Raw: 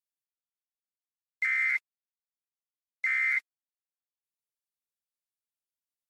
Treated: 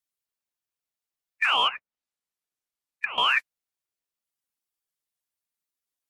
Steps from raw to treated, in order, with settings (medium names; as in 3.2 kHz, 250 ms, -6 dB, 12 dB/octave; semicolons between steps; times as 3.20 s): coarse spectral quantiser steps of 15 dB; 1.67–3.18 s: low-pass that closes with the level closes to 880 Hz, closed at -27.5 dBFS; ring modulator with a swept carrier 680 Hz, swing 65%, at 2.5 Hz; trim +8.5 dB